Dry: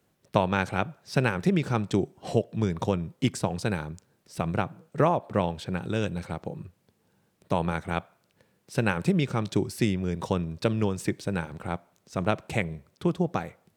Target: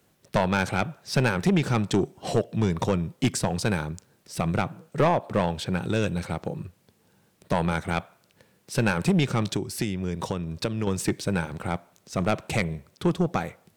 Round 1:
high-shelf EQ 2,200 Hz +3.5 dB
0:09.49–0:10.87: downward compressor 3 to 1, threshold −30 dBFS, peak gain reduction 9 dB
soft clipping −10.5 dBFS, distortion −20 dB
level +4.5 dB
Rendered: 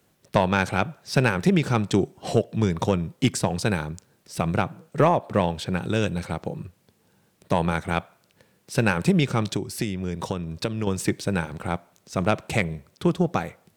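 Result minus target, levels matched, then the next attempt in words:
soft clipping: distortion −9 dB
high-shelf EQ 2,200 Hz +3.5 dB
0:09.49–0:10.87: downward compressor 3 to 1, threshold −30 dBFS, peak gain reduction 9 dB
soft clipping −18.5 dBFS, distortion −11 dB
level +4.5 dB

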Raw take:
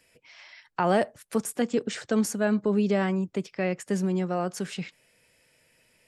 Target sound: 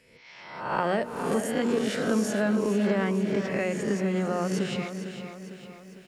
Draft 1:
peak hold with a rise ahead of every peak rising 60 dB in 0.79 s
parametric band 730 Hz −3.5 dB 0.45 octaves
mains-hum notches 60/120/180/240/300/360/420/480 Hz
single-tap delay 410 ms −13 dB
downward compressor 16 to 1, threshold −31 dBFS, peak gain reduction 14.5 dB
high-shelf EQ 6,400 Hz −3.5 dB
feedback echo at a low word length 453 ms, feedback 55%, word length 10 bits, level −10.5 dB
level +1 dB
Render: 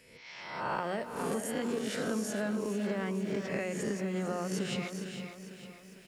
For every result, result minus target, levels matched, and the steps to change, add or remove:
downward compressor: peak gain reduction +9 dB; 8,000 Hz band +4.5 dB
change: downward compressor 16 to 1, threshold −21.5 dBFS, peak gain reduction 5.5 dB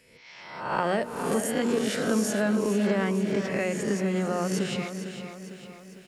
8,000 Hz band +4.0 dB
change: high-shelf EQ 6,400 Hz −11 dB

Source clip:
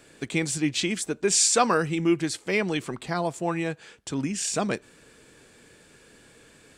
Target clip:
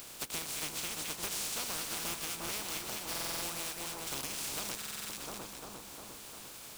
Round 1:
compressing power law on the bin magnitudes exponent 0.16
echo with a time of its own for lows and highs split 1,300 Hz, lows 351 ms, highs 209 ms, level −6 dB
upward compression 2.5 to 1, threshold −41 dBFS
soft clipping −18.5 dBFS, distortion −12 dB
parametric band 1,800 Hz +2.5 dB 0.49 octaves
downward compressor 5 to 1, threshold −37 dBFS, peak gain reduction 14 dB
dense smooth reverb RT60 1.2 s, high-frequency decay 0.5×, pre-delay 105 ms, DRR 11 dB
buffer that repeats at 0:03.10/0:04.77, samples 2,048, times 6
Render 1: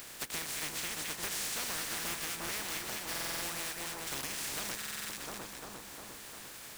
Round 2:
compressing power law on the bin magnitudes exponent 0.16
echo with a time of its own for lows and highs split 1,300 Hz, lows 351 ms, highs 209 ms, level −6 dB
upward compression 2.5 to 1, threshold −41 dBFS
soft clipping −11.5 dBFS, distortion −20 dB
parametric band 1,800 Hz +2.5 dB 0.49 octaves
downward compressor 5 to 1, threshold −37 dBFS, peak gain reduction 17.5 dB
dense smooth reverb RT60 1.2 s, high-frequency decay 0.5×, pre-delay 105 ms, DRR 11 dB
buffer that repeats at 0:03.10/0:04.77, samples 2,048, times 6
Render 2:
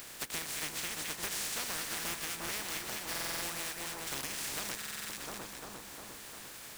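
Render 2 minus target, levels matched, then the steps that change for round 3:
2,000 Hz band +3.5 dB
change: parametric band 1,800 Hz −5 dB 0.49 octaves

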